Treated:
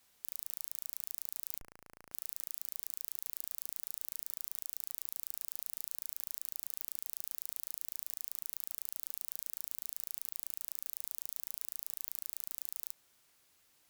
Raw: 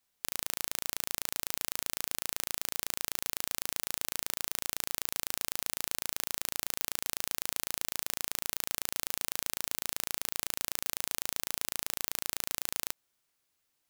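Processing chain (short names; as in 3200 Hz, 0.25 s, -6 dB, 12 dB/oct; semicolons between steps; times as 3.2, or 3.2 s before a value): tube stage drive 25 dB, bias 0.3; 1.59–2.12 Schmitt trigger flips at -45 dBFS; gain +10 dB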